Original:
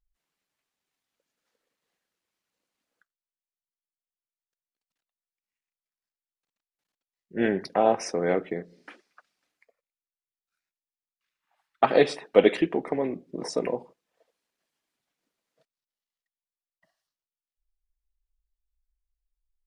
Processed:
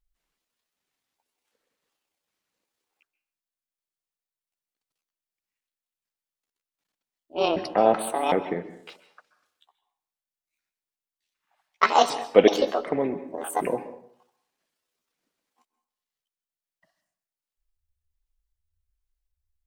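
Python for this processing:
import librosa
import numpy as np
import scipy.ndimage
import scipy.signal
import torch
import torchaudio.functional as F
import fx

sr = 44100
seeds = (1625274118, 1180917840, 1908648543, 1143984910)

y = fx.pitch_trill(x, sr, semitones=8.5, every_ms=378)
y = fx.rev_plate(y, sr, seeds[0], rt60_s=0.61, hf_ratio=0.65, predelay_ms=120, drr_db=13.0)
y = F.gain(torch.from_numpy(y), 2.0).numpy()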